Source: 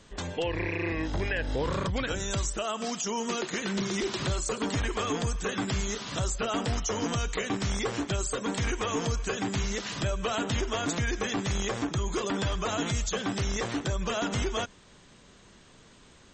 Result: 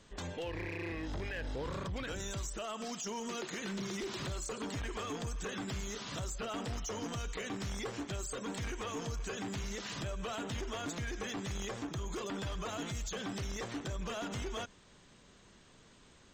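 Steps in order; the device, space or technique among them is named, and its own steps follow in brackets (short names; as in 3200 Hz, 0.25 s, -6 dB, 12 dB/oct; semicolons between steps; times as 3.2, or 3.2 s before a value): limiter into clipper (limiter -25 dBFS, peak gain reduction 6.5 dB; hard clip -28.5 dBFS, distortion -19 dB); gain -5.5 dB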